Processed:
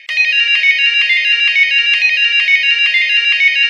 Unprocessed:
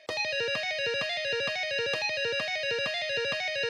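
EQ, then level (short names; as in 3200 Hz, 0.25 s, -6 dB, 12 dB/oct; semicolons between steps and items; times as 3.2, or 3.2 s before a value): resonant high-pass 2100 Hz, resonance Q 7.8; bell 2900 Hz +10 dB 0.28 oct; +7.5 dB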